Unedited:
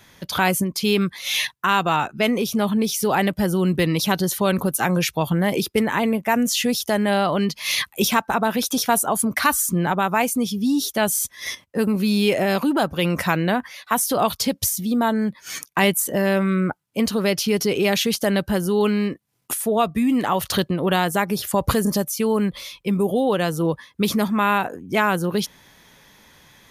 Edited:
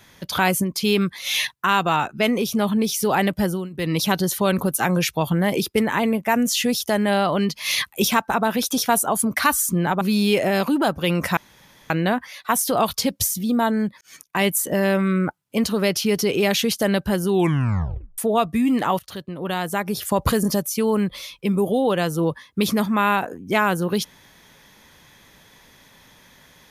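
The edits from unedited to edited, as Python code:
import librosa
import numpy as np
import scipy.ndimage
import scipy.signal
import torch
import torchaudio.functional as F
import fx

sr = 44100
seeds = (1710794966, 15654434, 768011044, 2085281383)

y = fx.edit(x, sr, fx.fade_down_up(start_s=3.44, length_s=0.52, db=-20.5, fade_s=0.26),
    fx.cut(start_s=10.01, length_s=1.95),
    fx.insert_room_tone(at_s=13.32, length_s=0.53),
    fx.fade_in_span(start_s=15.43, length_s=0.55),
    fx.tape_stop(start_s=18.7, length_s=0.9),
    fx.fade_in_from(start_s=20.41, length_s=1.19, floor_db=-20.5), tone=tone)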